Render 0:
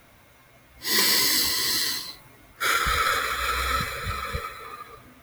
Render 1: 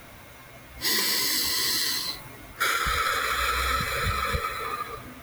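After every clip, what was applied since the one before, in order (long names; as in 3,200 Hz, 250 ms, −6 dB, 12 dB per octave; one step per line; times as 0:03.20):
downward compressor 6 to 1, threshold −31 dBFS, peak gain reduction 13 dB
level +8 dB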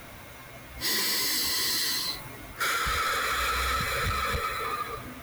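soft clipping −24.5 dBFS, distortion −12 dB
level +1.5 dB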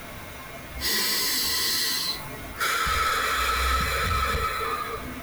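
in parallel at −2 dB: brickwall limiter −33.5 dBFS, peak gain reduction 10.5 dB
on the sum: convolution reverb, pre-delay 5 ms, DRR 6.5 dB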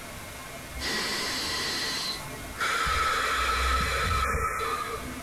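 linear delta modulator 64 kbit/s, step −35 dBFS
time-frequency box erased 0:04.24–0:04.59, 2,500–5,200 Hz
level −1.5 dB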